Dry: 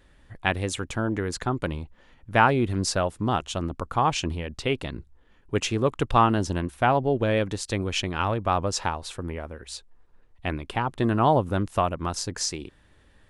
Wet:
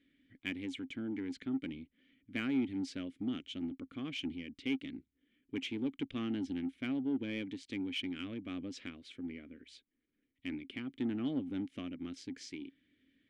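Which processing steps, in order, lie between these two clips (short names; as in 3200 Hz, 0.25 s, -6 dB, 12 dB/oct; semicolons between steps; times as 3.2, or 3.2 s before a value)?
vowel filter i; in parallel at -4 dB: soft clip -37 dBFS, distortion -9 dB; on the sum: gain -3 dB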